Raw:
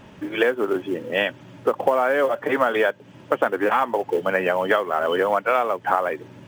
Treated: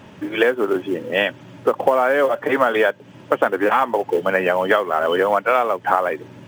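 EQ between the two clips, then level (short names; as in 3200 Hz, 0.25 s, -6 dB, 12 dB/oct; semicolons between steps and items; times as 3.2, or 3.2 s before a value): HPF 62 Hz; +3.0 dB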